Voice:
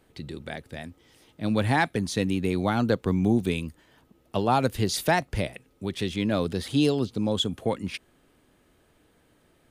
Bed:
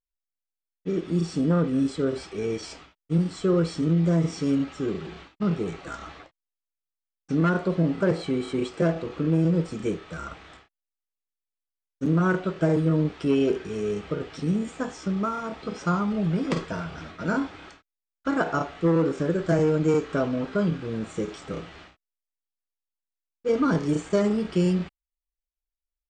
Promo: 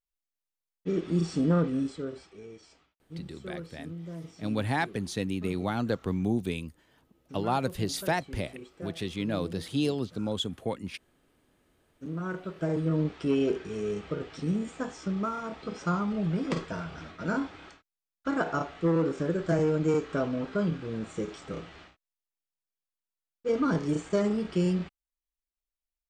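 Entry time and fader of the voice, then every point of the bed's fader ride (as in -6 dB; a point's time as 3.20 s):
3.00 s, -5.5 dB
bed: 1.58 s -2 dB
2.50 s -18.5 dB
11.65 s -18.5 dB
13.01 s -4 dB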